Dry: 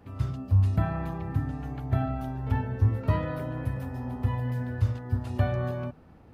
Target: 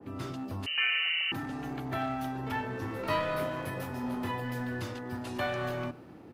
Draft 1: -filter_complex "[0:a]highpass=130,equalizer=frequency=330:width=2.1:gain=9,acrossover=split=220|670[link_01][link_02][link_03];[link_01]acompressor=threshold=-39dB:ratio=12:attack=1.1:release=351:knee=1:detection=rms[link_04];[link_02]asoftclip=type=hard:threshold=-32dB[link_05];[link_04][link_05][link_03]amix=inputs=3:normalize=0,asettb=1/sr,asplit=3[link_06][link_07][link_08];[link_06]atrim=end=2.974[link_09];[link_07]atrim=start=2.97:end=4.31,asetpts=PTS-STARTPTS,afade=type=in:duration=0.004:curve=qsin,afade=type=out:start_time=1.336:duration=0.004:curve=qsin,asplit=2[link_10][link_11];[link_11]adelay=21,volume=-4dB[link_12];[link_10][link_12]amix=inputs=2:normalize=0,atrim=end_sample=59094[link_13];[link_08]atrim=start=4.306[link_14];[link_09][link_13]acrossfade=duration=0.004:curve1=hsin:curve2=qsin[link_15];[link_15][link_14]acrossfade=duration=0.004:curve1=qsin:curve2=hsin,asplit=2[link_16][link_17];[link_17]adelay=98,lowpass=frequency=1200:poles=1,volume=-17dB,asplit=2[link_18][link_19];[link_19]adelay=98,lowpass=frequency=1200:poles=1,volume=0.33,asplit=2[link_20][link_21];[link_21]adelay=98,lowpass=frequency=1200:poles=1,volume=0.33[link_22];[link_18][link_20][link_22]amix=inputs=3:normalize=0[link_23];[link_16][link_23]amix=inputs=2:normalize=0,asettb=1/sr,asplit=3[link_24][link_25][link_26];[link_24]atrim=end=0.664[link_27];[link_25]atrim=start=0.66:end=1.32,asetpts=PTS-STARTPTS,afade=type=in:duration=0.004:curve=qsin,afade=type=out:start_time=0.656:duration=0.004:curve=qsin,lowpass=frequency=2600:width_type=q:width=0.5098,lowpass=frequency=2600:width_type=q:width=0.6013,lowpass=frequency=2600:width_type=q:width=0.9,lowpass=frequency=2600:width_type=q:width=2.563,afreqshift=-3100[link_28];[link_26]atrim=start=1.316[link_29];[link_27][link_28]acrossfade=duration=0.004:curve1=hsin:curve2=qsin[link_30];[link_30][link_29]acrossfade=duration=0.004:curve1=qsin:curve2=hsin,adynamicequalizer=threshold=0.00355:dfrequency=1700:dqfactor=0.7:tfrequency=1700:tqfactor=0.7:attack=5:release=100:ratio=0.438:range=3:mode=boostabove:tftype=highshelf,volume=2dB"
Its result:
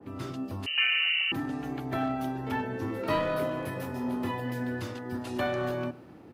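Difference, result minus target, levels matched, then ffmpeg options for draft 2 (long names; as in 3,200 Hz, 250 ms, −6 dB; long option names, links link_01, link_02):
hard clipping: distortion −8 dB
-filter_complex "[0:a]highpass=130,equalizer=frequency=330:width=2.1:gain=9,acrossover=split=220|670[link_01][link_02][link_03];[link_01]acompressor=threshold=-39dB:ratio=12:attack=1.1:release=351:knee=1:detection=rms[link_04];[link_02]asoftclip=type=hard:threshold=-41dB[link_05];[link_04][link_05][link_03]amix=inputs=3:normalize=0,asettb=1/sr,asplit=3[link_06][link_07][link_08];[link_06]atrim=end=2.974[link_09];[link_07]atrim=start=2.97:end=4.31,asetpts=PTS-STARTPTS,afade=type=in:duration=0.004:curve=qsin,afade=type=out:start_time=1.336:duration=0.004:curve=qsin,asplit=2[link_10][link_11];[link_11]adelay=21,volume=-4dB[link_12];[link_10][link_12]amix=inputs=2:normalize=0,atrim=end_sample=59094[link_13];[link_08]atrim=start=4.306[link_14];[link_09][link_13]acrossfade=duration=0.004:curve1=hsin:curve2=qsin[link_15];[link_15][link_14]acrossfade=duration=0.004:curve1=qsin:curve2=hsin,asplit=2[link_16][link_17];[link_17]adelay=98,lowpass=frequency=1200:poles=1,volume=-17dB,asplit=2[link_18][link_19];[link_19]adelay=98,lowpass=frequency=1200:poles=1,volume=0.33,asplit=2[link_20][link_21];[link_21]adelay=98,lowpass=frequency=1200:poles=1,volume=0.33[link_22];[link_18][link_20][link_22]amix=inputs=3:normalize=0[link_23];[link_16][link_23]amix=inputs=2:normalize=0,asettb=1/sr,asplit=3[link_24][link_25][link_26];[link_24]atrim=end=0.664[link_27];[link_25]atrim=start=0.66:end=1.32,asetpts=PTS-STARTPTS,afade=type=in:duration=0.004:curve=qsin,afade=type=out:start_time=0.656:duration=0.004:curve=qsin,lowpass=frequency=2600:width_type=q:width=0.5098,lowpass=frequency=2600:width_type=q:width=0.6013,lowpass=frequency=2600:width_type=q:width=0.9,lowpass=frequency=2600:width_type=q:width=2.563,afreqshift=-3100[link_28];[link_26]atrim=start=1.316[link_29];[link_27][link_28]acrossfade=duration=0.004:curve1=hsin:curve2=qsin[link_30];[link_30][link_29]acrossfade=duration=0.004:curve1=qsin:curve2=hsin,adynamicequalizer=threshold=0.00355:dfrequency=1700:dqfactor=0.7:tfrequency=1700:tqfactor=0.7:attack=5:release=100:ratio=0.438:range=3:mode=boostabove:tftype=highshelf,volume=2dB"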